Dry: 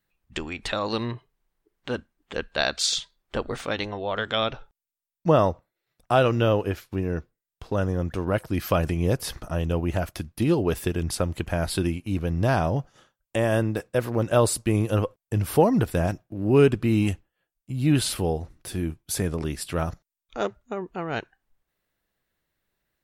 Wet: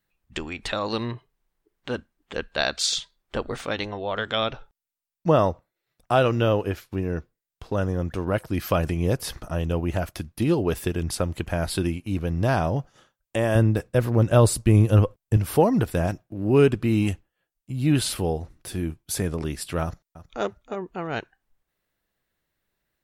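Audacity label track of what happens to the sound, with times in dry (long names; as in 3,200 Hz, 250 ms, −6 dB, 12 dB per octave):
13.550000	15.370000	low-shelf EQ 170 Hz +11.5 dB
19.830000	20.430000	delay throw 320 ms, feedback 20%, level −14.5 dB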